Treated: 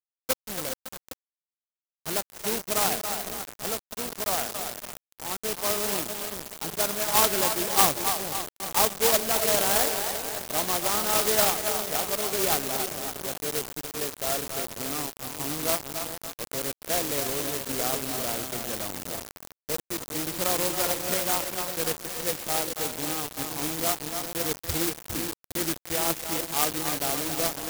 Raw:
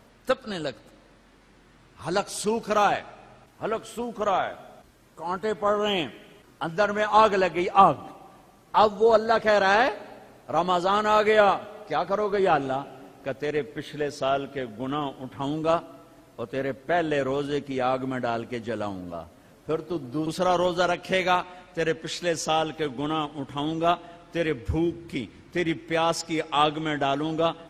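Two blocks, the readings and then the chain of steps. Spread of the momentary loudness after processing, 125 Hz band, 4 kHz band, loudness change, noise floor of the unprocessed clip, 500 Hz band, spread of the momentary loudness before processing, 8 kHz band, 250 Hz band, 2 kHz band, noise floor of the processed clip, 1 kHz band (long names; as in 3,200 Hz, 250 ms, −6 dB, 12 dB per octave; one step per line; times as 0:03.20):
12 LU, −4.5 dB, +3.0 dB, −1.0 dB, −56 dBFS, −6.5 dB, 14 LU, +15.0 dB, −5.5 dB, −3.5 dB, below −85 dBFS, −7.0 dB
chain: high-shelf EQ 8,000 Hz −11 dB
echo with a time of its own for lows and highs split 540 Hz, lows 405 ms, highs 278 ms, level −6.5 dB
bit reduction 5 bits
bad sample-rate conversion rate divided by 3×, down filtered, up zero stuff
converter with an unsteady clock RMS 0.11 ms
level −7 dB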